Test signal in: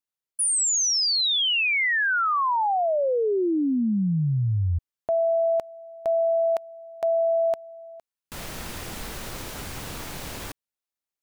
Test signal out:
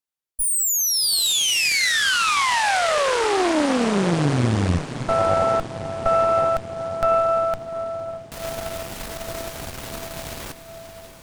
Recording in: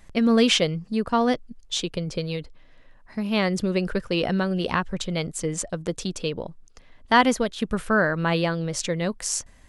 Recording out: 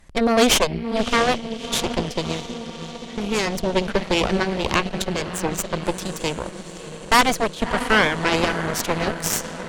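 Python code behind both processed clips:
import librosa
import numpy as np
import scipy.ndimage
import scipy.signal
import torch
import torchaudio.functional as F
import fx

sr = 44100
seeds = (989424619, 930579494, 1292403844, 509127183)

y = fx.echo_diffused(x, sr, ms=637, feedback_pct=69, wet_db=-11.0)
y = fx.cheby_harmonics(y, sr, harmonics=(5, 6), levels_db=(-42, -8), full_scale_db=-6.0)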